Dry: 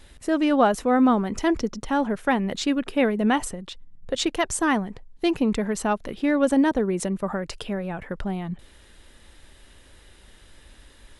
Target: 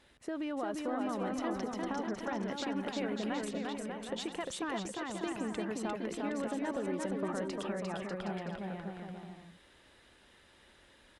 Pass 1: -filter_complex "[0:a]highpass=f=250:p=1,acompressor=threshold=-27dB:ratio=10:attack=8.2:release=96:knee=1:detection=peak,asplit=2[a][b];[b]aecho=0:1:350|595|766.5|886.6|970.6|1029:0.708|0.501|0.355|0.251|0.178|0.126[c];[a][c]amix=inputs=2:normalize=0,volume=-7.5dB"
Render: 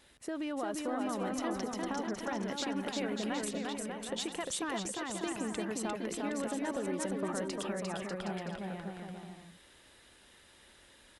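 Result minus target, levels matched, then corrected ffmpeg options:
4000 Hz band +2.5 dB
-filter_complex "[0:a]highpass=f=250:p=1,acompressor=threshold=-27dB:ratio=10:attack=8.2:release=96:knee=1:detection=peak,lowpass=f=3.4k:p=1,asplit=2[a][b];[b]aecho=0:1:350|595|766.5|886.6|970.6|1029:0.708|0.501|0.355|0.251|0.178|0.126[c];[a][c]amix=inputs=2:normalize=0,volume=-7.5dB"

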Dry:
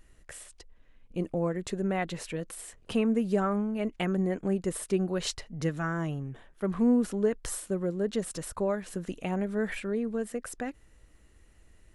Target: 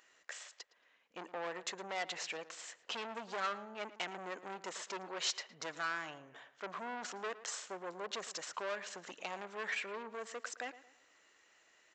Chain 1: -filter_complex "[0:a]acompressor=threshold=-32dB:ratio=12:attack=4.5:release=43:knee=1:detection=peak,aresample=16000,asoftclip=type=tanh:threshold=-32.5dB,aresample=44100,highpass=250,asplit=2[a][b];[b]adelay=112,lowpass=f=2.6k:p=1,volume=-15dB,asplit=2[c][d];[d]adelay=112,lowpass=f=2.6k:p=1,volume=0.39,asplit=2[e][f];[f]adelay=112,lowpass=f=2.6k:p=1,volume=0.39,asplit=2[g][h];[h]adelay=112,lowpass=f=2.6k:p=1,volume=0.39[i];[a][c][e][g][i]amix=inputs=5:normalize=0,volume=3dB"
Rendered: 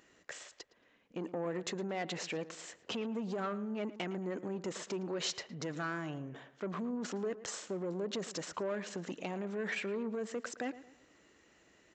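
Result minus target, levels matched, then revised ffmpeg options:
compressor: peak gain reduction +13 dB; 250 Hz band +11.5 dB
-filter_complex "[0:a]aresample=16000,asoftclip=type=tanh:threshold=-32.5dB,aresample=44100,highpass=770,asplit=2[a][b];[b]adelay=112,lowpass=f=2.6k:p=1,volume=-15dB,asplit=2[c][d];[d]adelay=112,lowpass=f=2.6k:p=1,volume=0.39,asplit=2[e][f];[f]adelay=112,lowpass=f=2.6k:p=1,volume=0.39,asplit=2[g][h];[h]adelay=112,lowpass=f=2.6k:p=1,volume=0.39[i];[a][c][e][g][i]amix=inputs=5:normalize=0,volume=3dB"

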